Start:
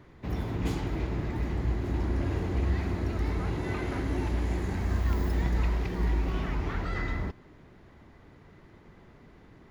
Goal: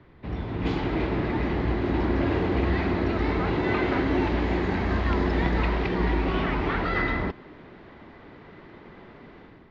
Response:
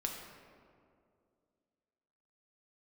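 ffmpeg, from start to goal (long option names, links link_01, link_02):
-filter_complex "[0:a]lowpass=frequency=4200:width=0.5412,lowpass=frequency=4200:width=1.3066,acrossover=split=190[link_01][link_02];[link_02]dynaudnorm=framelen=470:gausssize=3:maxgain=10dB[link_03];[link_01][link_03]amix=inputs=2:normalize=0"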